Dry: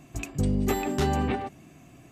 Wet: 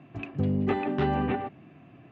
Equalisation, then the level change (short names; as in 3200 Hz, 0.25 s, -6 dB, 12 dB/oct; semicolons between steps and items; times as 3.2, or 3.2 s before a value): HPF 88 Hz 24 dB/oct; LPF 2900 Hz 24 dB/oct; notch 2200 Hz, Q 24; 0.0 dB